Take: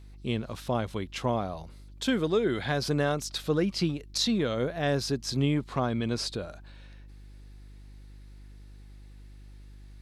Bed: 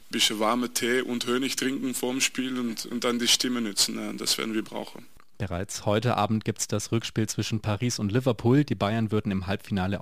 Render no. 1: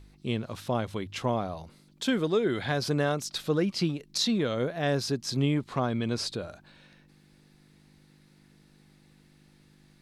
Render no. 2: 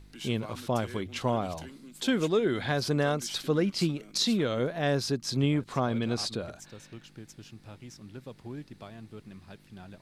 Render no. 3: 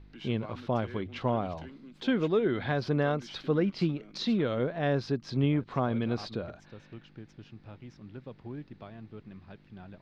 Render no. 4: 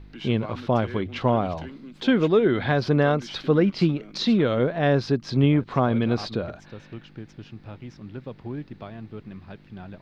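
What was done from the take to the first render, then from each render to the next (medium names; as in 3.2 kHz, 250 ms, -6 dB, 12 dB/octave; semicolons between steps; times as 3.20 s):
de-hum 50 Hz, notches 2
add bed -20 dB
distance through air 260 m
trim +7.5 dB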